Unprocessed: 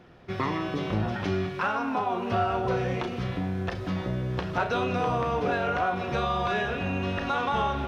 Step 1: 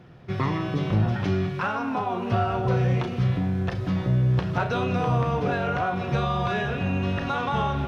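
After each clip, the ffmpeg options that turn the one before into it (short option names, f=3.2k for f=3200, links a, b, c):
-af "equalizer=f=130:t=o:w=0.92:g=11"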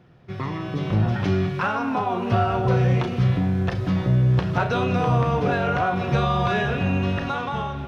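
-af "dynaudnorm=f=240:g=7:m=8.5dB,volume=-4.5dB"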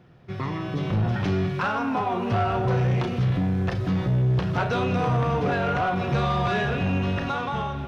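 -af "asoftclip=type=tanh:threshold=-17dB"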